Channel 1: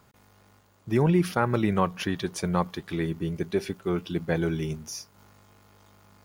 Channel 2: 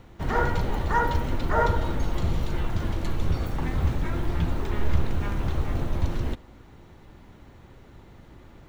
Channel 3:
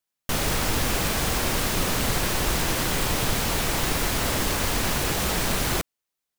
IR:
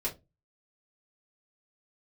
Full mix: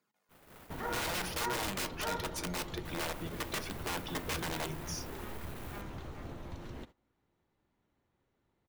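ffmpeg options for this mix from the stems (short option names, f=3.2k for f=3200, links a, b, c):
-filter_complex "[0:a]highpass=f=180:w=0.5412,highpass=f=180:w=1.3066,flanger=delay=0.4:depth=2.2:regen=11:speed=1.3:shape=triangular,aeval=exprs='(mod(26.6*val(0)+1,2)-1)/26.6':c=same,volume=2.5dB,asplit=2[a][b];[b]volume=-17dB[c];[1:a]adelay=500,volume=-7dB[d];[2:a]equalizer=f=5.7k:t=o:w=1.7:g=-12.5,asoftclip=type=tanh:threshold=-27.5dB,volume=-16dB,asplit=3[e][f][g];[e]atrim=end=1.34,asetpts=PTS-STARTPTS,afade=t=out:st=1.336:d=0.004:c=hsin[h];[f]atrim=start=1.34:end=2.85,asetpts=PTS-STARTPTS,volume=0[i];[g]atrim=start=2.85,asetpts=PTS-STARTPTS,afade=t=in:d=0.004:c=hsin[j];[h][i][j]concat=n=3:v=0:a=1[k];[a][d]amix=inputs=2:normalize=0,acompressor=threshold=-37dB:ratio=2,volume=0dB[l];[3:a]atrim=start_sample=2205[m];[c][m]afir=irnorm=-1:irlink=0[n];[k][l][n]amix=inputs=3:normalize=0,agate=range=-19dB:threshold=-45dB:ratio=16:detection=peak,lowshelf=f=96:g=-11.5"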